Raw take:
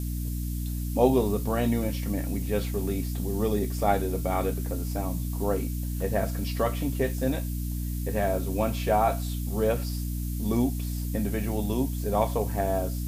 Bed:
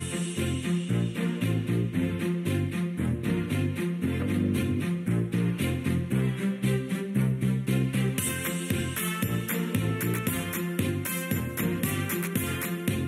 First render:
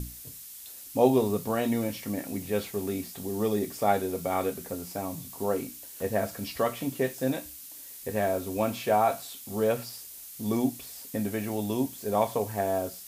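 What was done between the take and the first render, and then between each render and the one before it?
mains-hum notches 60/120/180/240/300 Hz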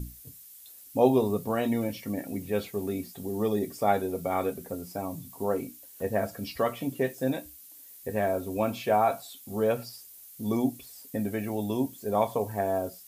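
broadband denoise 9 dB, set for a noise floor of −45 dBFS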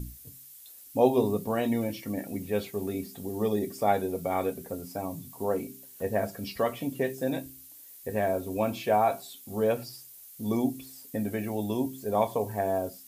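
hum removal 66.04 Hz, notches 6
dynamic equaliser 1,300 Hz, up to −5 dB, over −53 dBFS, Q 5.8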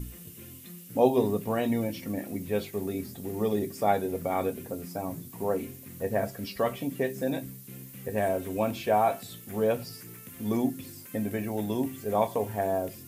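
mix in bed −20 dB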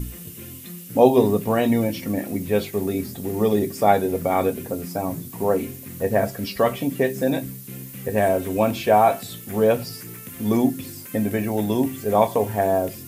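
level +8 dB
brickwall limiter −2 dBFS, peak gain reduction 1 dB

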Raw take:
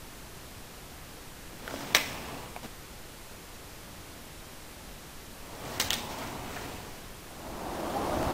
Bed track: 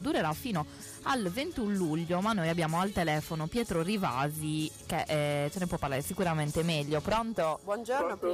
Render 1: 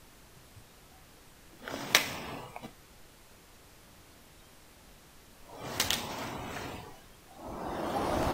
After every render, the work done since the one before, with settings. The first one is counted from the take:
noise reduction from a noise print 10 dB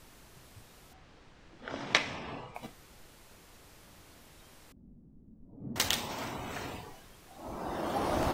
0:00.93–0:02.55: high-frequency loss of the air 130 metres
0:04.72–0:05.76: low-pass with resonance 230 Hz, resonance Q 2.7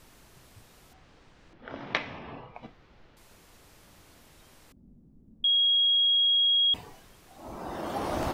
0:01.53–0:03.17: high-frequency loss of the air 240 metres
0:05.44–0:06.74: beep over 3,290 Hz −20 dBFS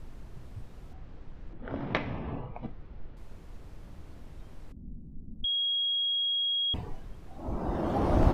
spectral tilt −3.5 dB per octave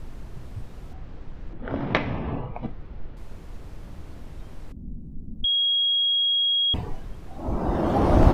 level +7 dB

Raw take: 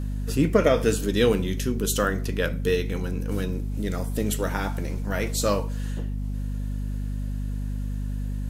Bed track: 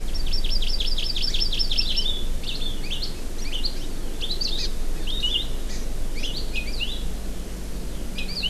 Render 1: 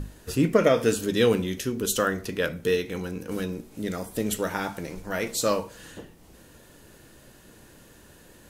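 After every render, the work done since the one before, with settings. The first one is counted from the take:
mains-hum notches 50/100/150/200/250 Hz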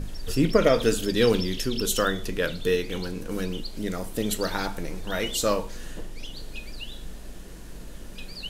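mix in bed track −10.5 dB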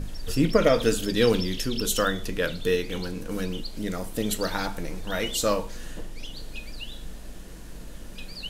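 notch filter 390 Hz, Q 12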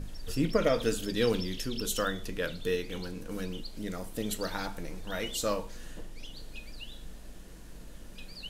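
level −6.5 dB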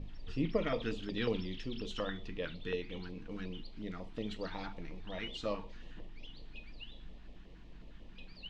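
auto-filter notch square 5.5 Hz 540–1,500 Hz
transistor ladder low-pass 4,200 Hz, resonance 20%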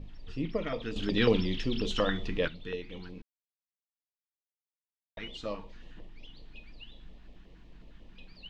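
0:00.96–0:02.48: clip gain +9.5 dB
0:03.22–0:05.17: silence

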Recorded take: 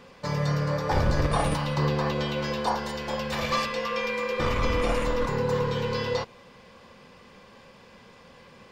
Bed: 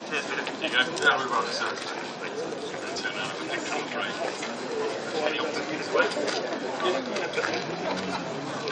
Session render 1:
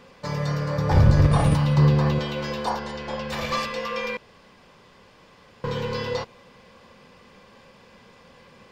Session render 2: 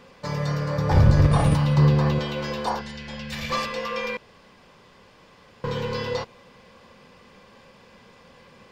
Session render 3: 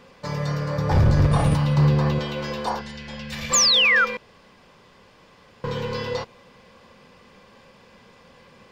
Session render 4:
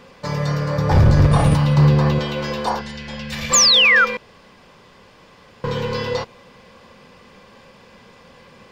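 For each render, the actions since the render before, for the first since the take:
0:00.78–0:02.19: parametric band 110 Hz +12.5 dB 1.8 octaves; 0:02.79–0:03.29: high-frequency loss of the air 72 metres; 0:04.17–0:05.64: fill with room tone
0:02.81–0:03.50: flat-topped bell 640 Hz −11 dB 2.4 octaves
0:03.53–0:04.05: sound drawn into the spectrogram fall 1,300–7,600 Hz −17 dBFS; hard clipping −11.5 dBFS, distortion −19 dB
level +4.5 dB

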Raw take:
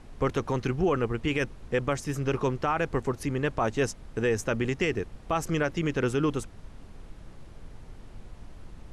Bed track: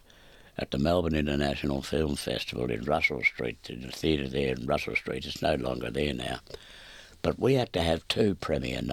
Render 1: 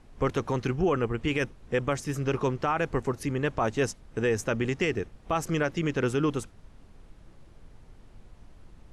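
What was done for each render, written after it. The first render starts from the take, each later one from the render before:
noise reduction from a noise print 6 dB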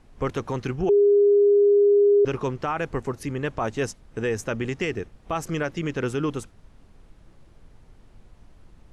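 0:00.89–0:02.25: beep over 407 Hz −13.5 dBFS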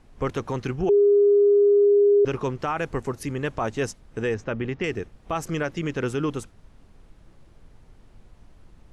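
0:00.94–0:01.85: envelope flattener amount 70%
0:02.59–0:03.62: high-shelf EQ 5,500 Hz +4 dB
0:04.34–0:04.84: high-frequency loss of the air 200 metres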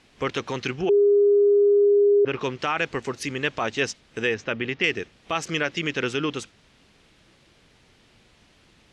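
treble cut that deepens with the level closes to 1,400 Hz, closed at −15 dBFS
meter weighting curve D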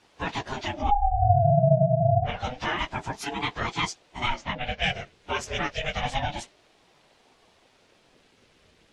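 random phases in long frames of 50 ms
ring modulator whose carrier an LFO sweeps 420 Hz, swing 40%, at 0.28 Hz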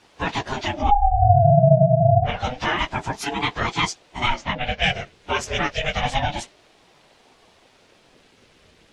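level +5.5 dB
brickwall limiter −3 dBFS, peak gain reduction 1 dB

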